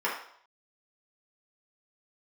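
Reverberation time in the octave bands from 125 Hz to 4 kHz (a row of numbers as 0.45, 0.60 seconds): 0.35, 0.50, 0.60, 0.65, 0.55, 0.55 seconds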